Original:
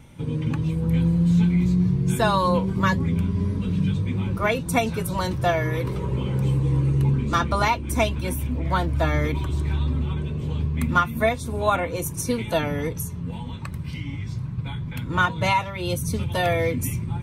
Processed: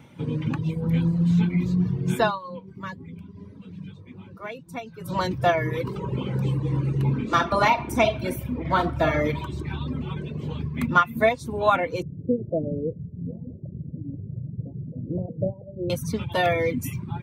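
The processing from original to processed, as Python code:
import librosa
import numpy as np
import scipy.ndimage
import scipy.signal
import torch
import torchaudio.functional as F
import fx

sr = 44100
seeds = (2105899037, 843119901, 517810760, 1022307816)

y = fx.reverb_throw(x, sr, start_s=7.01, length_s=2.41, rt60_s=0.89, drr_db=4.0)
y = fx.steep_lowpass(y, sr, hz=620.0, slope=72, at=(12.02, 15.9))
y = fx.edit(y, sr, fx.fade_down_up(start_s=2.21, length_s=2.96, db=-14.5, fade_s=0.18), tone=tone)
y = scipy.signal.sosfilt(scipy.signal.butter(2, 130.0, 'highpass', fs=sr, output='sos'), y)
y = fx.dereverb_blind(y, sr, rt60_s=0.88)
y = fx.peak_eq(y, sr, hz=9900.0, db=-10.0, octaves=1.3)
y = y * librosa.db_to_amplitude(2.0)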